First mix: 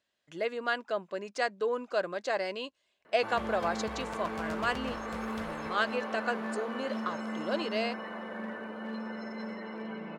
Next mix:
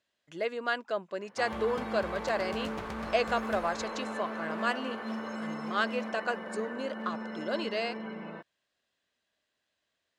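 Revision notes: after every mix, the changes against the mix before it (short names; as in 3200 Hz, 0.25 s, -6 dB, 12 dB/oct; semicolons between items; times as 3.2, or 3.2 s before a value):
background: entry -1.85 s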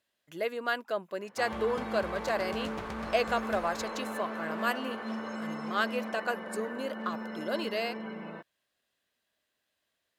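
speech: remove LPF 8000 Hz 24 dB/oct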